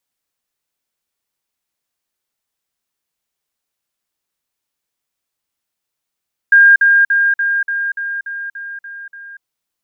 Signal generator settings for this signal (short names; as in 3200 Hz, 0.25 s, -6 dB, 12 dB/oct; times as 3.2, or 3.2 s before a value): level ladder 1610 Hz -4 dBFS, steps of -3 dB, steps 10, 0.24 s 0.05 s